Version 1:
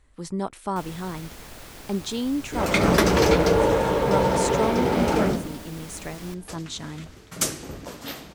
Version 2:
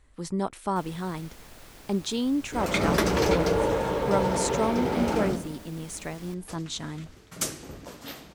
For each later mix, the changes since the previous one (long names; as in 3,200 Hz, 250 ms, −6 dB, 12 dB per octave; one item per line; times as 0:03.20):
first sound −6.5 dB
second sound −5.0 dB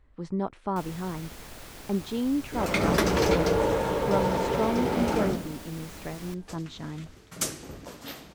speech: add head-to-tape spacing loss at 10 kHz 26 dB
first sound +4.5 dB